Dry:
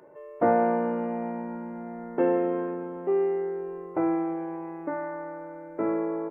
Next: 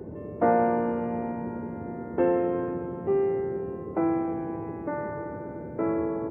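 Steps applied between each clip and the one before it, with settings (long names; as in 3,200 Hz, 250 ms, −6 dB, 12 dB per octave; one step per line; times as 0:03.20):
noise in a band 76–450 Hz −39 dBFS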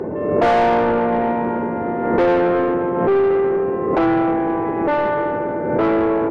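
mid-hump overdrive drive 25 dB, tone 1,800 Hz, clips at −10.5 dBFS
background raised ahead of every attack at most 40 dB per second
level +2.5 dB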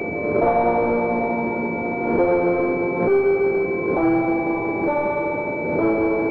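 flanger 0.85 Hz, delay 9 ms, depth 9.7 ms, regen −44%
backwards echo 417 ms −18 dB
switching amplifier with a slow clock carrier 2,300 Hz
level +1.5 dB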